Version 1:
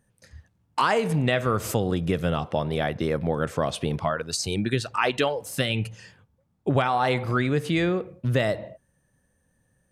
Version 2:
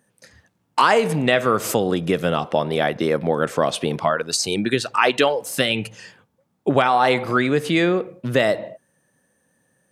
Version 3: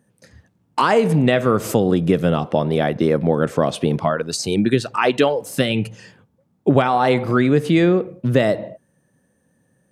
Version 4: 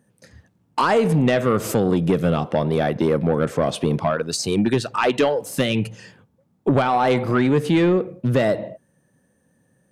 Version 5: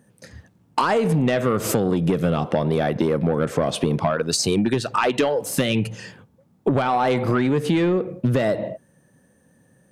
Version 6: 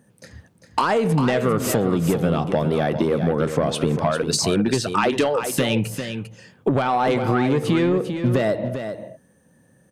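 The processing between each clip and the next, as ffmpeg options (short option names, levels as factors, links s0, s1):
-af "highpass=210,volume=2.11"
-af "lowshelf=f=460:g=11.5,volume=0.668"
-af "asoftclip=type=tanh:threshold=0.316"
-af "acompressor=threshold=0.0794:ratio=6,volume=1.78"
-af "aecho=1:1:398:0.376"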